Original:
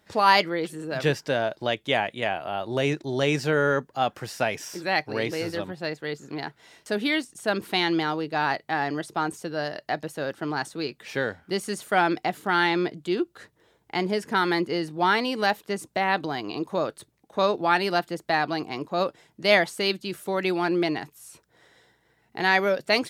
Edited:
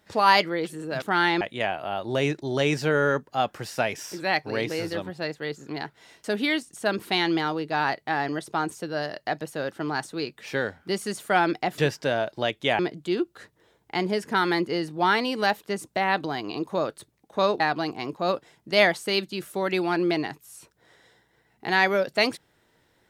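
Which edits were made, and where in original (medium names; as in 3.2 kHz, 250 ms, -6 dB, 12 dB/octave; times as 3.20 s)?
1.02–2.03 s: swap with 12.40–12.79 s
17.60–18.32 s: delete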